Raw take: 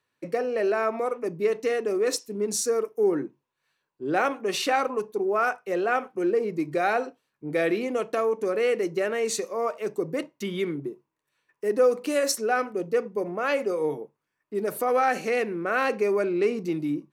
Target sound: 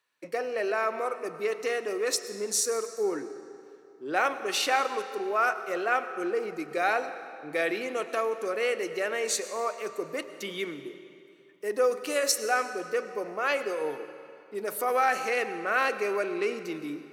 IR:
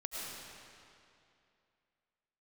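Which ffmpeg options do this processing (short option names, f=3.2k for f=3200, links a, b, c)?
-filter_complex "[0:a]highpass=f=890:p=1,asplit=2[a][b];[1:a]atrim=start_sample=2205[c];[b][c]afir=irnorm=-1:irlink=0,volume=-10dB[d];[a][d]amix=inputs=2:normalize=0"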